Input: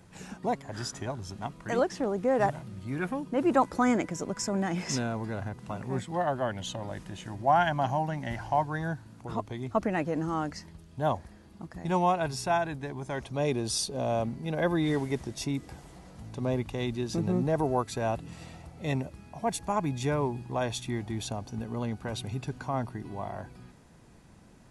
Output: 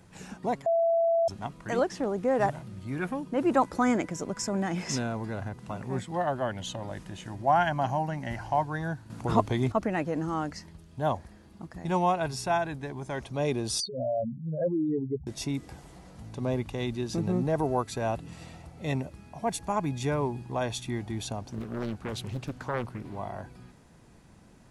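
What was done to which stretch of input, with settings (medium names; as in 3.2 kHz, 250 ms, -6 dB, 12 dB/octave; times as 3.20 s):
0.66–1.28 s: bleep 668 Hz -21 dBFS
7.54–8.45 s: band-stop 3.5 kHz, Q 7.2
9.10–9.72 s: gain +9.5 dB
13.80–15.27 s: spectral contrast enhancement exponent 3.7
21.41–23.18 s: loudspeaker Doppler distortion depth 0.84 ms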